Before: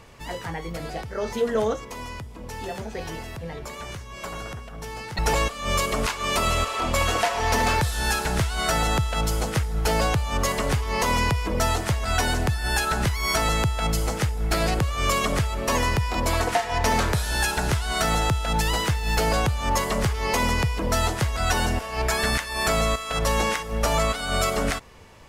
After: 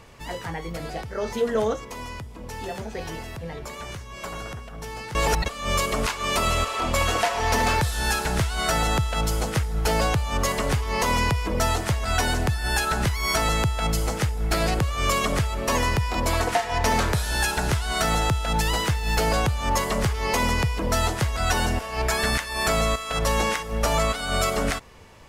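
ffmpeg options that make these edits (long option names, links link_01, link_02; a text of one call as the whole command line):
ffmpeg -i in.wav -filter_complex "[0:a]asplit=3[link_01][link_02][link_03];[link_01]atrim=end=5.152[link_04];[link_02]atrim=start=5.148:end=5.462,asetpts=PTS-STARTPTS,areverse[link_05];[link_03]atrim=start=5.458[link_06];[link_04][link_05]acrossfade=duration=0.004:curve1=hsin:curve2=hsin[link_07];[link_07][link_06]acrossfade=duration=0.004:curve1=hsin:curve2=hsin" out.wav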